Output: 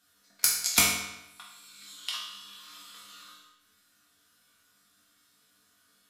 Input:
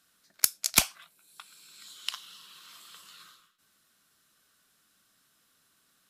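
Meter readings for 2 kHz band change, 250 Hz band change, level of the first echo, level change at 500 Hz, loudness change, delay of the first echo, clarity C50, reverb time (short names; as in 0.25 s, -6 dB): +4.0 dB, +3.5 dB, none, +2.5 dB, +1.0 dB, none, 2.0 dB, 0.90 s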